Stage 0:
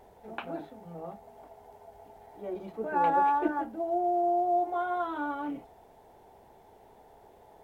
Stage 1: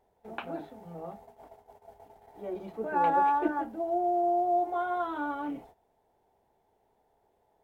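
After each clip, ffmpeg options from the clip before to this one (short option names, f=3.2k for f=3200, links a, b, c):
-af "agate=range=-15dB:threshold=-51dB:ratio=16:detection=peak"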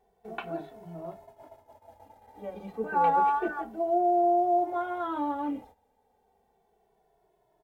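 -filter_complex "[0:a]asplit=2[a][b];[b]adelay=2.2,afreqshift=-0.3[c];[a][c]amix=inputs=2:normalize=1,volume=4dB"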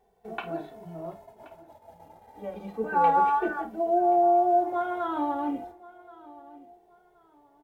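-filter_complex "[0:a]asplit=2[a][b];[b]adelay=50,volume=-12.5dB[c];[a][c]amix=inputs=2:normalize=0,aecho=1:1:1076|2152:0.0944|0.0264,volume=2dB"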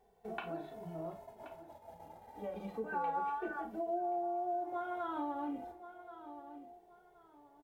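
-filter_complex "[0:a]acompressor=threshold=-37dB:ratio=2.5,asplit=2[a][b];[b]adelay=38,volume=-12dB[c];[a][c]amix=inputs=2:normalize=0,volume=-2.5dB"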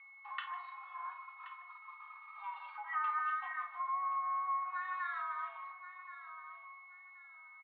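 -filter_complex "[0:a]asplit=2[a][b];[b]adelay=152,lowpass=f=2k:p=1,volume=-15.5dB,asplit=2[c][d];[d]adelay=152,lowpass=f=2k:p=1,volume=0.5,asplit=2[e][f];[f]adelay=152,lowpass=f=2k:p=1,volume=0.5,asplit=2[g][h];[h]adelay=152,lowpass=f=2k:p=1,volume=0.5,asplit=2[i][j];[j]adelay=152,lowpass=f=2k:p=1,volume=0.5[k];[a][c][e][g][i][k]amix=inputs=6:normalize=0,aeval=exprs='val(0)+0.00178*sin(2*PI*1800*n/s)':c=same,highpass=f=540:t=q:w=0.5412,highpass=f=540:t=q:w=1.307,lowpass=f=3.4k:t=q:w=0.5176,lowpass=f=3.4k:t=q:w=0.7071,lowpass=f=3.4k:t=q:w=1.932,afreqshift=390,volume=1dB"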